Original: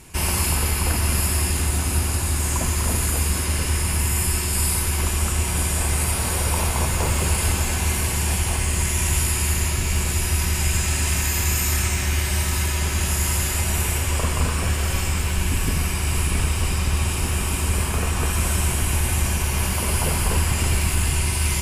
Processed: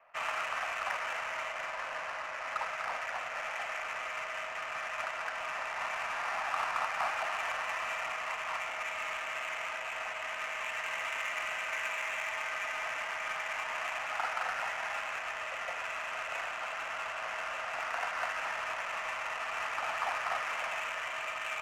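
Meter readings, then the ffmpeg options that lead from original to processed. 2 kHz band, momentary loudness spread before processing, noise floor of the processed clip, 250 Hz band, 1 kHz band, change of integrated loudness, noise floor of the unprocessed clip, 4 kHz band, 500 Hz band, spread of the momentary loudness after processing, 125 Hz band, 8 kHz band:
-4.5 dB, 2 LU, -39 dBFS, -32.5 dB, -4.0 dB, -13.5 dB, -24 dBFS, -14.5 dB, -9.5 dB, 4 LU, under -40 dB, -27.5 dB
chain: -af "highpass=f=390:t=q:w=0.5412,highpass=f=390:t=q:w=1.307,lowpass=f=2.2k:t=q:w=0.5176,lowpass=f=2.2k:t=q:w=0.7071,lowpass=f=2.2k:t=q:w=1.932,afreqshift=270,crystalizer=i=3:c=0,adynamicsmooth=sensitivity=5.5:basefreq=1.2k,volume=-5dB"

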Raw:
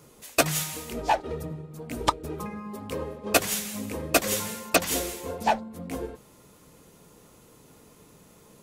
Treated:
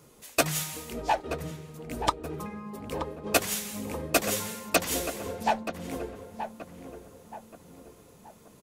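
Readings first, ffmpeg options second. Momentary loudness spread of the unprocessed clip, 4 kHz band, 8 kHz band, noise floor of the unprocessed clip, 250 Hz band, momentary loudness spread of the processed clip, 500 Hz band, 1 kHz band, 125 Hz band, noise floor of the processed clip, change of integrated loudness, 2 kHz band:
13 LU, -2.5 dB, -2.5 dB, -55 dBFS, -2.0 dB, 19 LU, -2.0 dB, -2.0 dB, -2.0 dB, -55 dBFS, -2.5 dB, -2.0 dB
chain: -filter_complex "[0:a]asplit=2[a][b];[b]adelay=927,lowpass=f=1.8k:p=1,volume=-9dB,asplit=2[c][d];[d]adelay=927,lowpass=f=1.8k:p=1,volume=0.44,asplit=2[e][f];[f]adelay=927,lowpass=f=1.8k:p=1,volume=0.44,asplit=2[g][h];[h]adelay=927,lowpass=f=1.8k:p=1,volume=0.44,asplit=2[i][j];[j]adelay=927,lowpass=f=1.8k:p=1,volume=0.44[k];[a][c][e][g][i][k]amix=inputs=6:normalize=0,volume=-2.5dB"

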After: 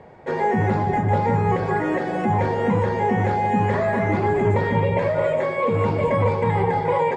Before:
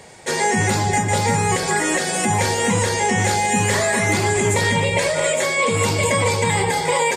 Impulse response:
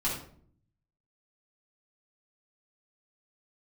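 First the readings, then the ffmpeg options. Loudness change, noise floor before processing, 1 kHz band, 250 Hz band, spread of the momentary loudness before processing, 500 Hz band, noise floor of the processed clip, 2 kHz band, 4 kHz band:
-2.5 dB, -24 dBFS, -1.0 dB, +0.5 dB, 1 LU, 0.0 dB, -26 dBFS, -8.5 dB, -19.0 dB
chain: -filter_complex "[0:a]lowpass=1.2k,asplit=2[a][b];[1:a]atrim=start_sample=2205,asetrate=34398,aresample=44100,adelay=133[c];[b][c]afir=irnorm=-1:irlink=0,volume=-22.5dB[d];[a][d]amix=inputs=2:normalize=0"

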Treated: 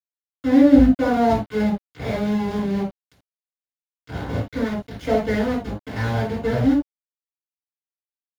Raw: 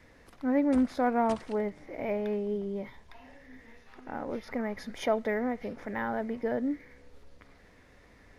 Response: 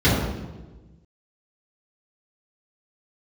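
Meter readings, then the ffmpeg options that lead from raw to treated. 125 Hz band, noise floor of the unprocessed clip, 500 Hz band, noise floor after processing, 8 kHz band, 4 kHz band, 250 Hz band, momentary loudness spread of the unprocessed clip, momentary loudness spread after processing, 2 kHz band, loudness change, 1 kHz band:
+20.0 dB, -58 dBFS, +7.5 dB, under -85 dBFS, n/a, +11.0 dB, +12.5 dB, 12 LU, 15 LU, +7.5 dB, +10.5 dB, +7.0 dB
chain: -filter_complex "[0:a]asubboost=boost=2.5:cutoff=150,aeval=exprs='val(0)*gte(abs(val(0)),0.0282)':c=same[a];[1:a]atrim=start_sample=2205,atrim=end_sample=3969[b];[a][b]afir=irnorm=-1:irlink=0,volume=-13dB"

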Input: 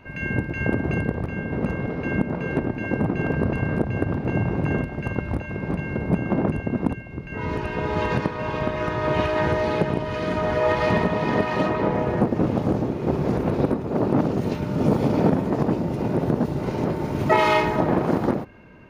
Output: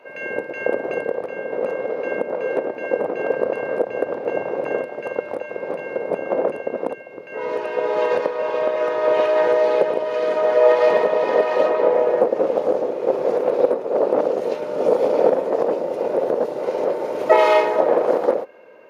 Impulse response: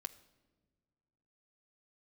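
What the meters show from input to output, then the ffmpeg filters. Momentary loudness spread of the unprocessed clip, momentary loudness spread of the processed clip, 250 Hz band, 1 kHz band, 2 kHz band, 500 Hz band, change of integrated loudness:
7 LU, 11 LU, -8.0 dB, +2.5 dB, -0.5 dB, +8.0 dB, +3.0 dB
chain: -af "highpass=f=510:t=q:w=4.9,volume=-1dB" -ar 48000 -c:a mp2 -b:a 192k

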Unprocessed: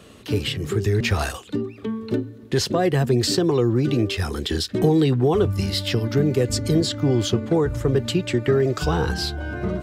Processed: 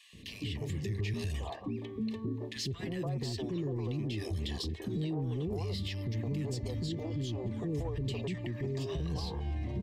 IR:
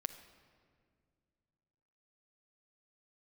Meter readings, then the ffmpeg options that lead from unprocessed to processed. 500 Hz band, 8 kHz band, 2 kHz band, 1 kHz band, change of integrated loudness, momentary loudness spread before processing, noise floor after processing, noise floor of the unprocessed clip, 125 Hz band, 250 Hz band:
-18.0 dB, -18.0 dB, -16.5 dB, -18.0 dB, -14.5 dB, 8 LU, -47 dBFS, -43 dBFS, -12.0 dB, -14.5 dB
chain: -filter_complex "[0:a]asuperstop=centerf=1400:order=8:qfactor=2.8,equalizer=f=660:t=o:w=2.3:g=-6.5,asplit=2[a][b];[b]acompressor=threshold=-36dB:ratio=6,volume=-2.5dB[c];[a][c]amix=inputs=2:normalize=0,asoftclip=type=tanh:threshold=-13.5dB,highshelf=f=5.7k:g=-11.5,acrossover=split=420|1400[d][e][f];[d]adelay=130[g];[e]adelay=290[h];[g][h][f]amix=inputs=3:normalize=0,alimiter=limit=-22.5dB:level=0:latency=1:release=67,volume=-5.5dB"

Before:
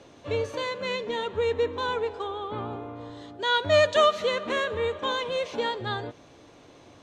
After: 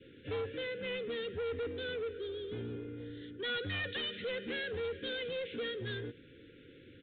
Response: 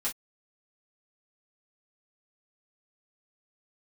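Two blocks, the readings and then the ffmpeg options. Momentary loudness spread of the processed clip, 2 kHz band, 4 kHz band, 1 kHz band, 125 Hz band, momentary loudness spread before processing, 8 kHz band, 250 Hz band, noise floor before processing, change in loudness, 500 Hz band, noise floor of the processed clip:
10 LU, -9.0 dB, -9.0 dB, -22.0 dB, -6.5 dB, 14 LU, under -35 dB, -5.5 dB, -53 dBFS, -11.5 dB, -12.0 dB, -57 dBFS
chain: -af "asuperstop=centerf=860:order=20:qfactor=1,aresample=8000,asoftclip=type=tanh:threshold=-30.5dB,aresample=44100,adynamicequalizer=threshold=0.00282:dfrequency=1000:dqfactor=1.2:tfrequency=1000:tqfactor=1.2:attack=5:release=100:ratio=0.375:range=2.5:mode=cutabove:tftype=bell,volume=-2.5dB"

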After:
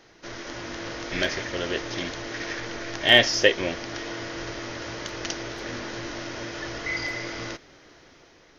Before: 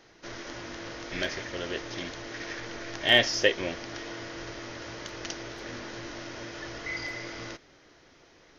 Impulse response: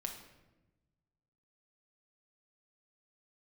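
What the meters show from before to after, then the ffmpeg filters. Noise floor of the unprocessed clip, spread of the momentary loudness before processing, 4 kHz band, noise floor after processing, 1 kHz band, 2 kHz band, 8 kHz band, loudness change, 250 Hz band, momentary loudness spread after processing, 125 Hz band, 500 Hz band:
-58 dBFS, 16 LU, +4.5 dB, -55 dBFS, +5.0 dB, +5.0 dB, +5.0 dB, +5.0 dB, +5.0 dB, 16 LU, +5.0 dB, +4.5 dB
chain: -af "dynaudnorm=f=130:g=9:m=3dB,volume=2.5dB"

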